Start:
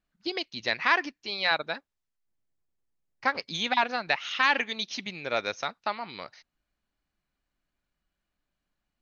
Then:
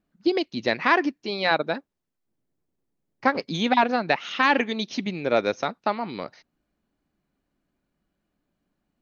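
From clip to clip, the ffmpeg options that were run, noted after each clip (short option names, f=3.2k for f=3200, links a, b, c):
-af "equalizer=f=270:w=0.38:g=14.5,volume=-1dB"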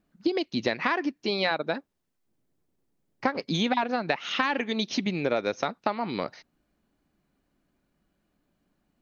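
-af "acompressor=threshold=-26dB:ratio=6,volume=3.5dB"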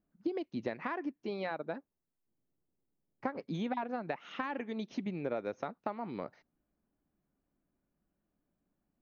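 -af "equalizer=f=4.8k:w=0.6:g=-15,volume=-8.5dB"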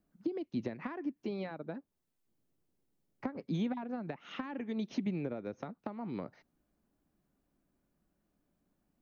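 -filter_complex "[0:a]acrossover=split=300[a][b];[b]acompressor=threshold=-46dB:ratio=6[c];[a][c]amix=inputs=2:normalize=0,volume=4dB"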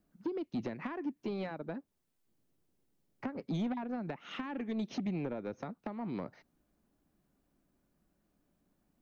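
-af "asoftclip=type=tanh:threshold=-31.5dB,volume=2.5dB"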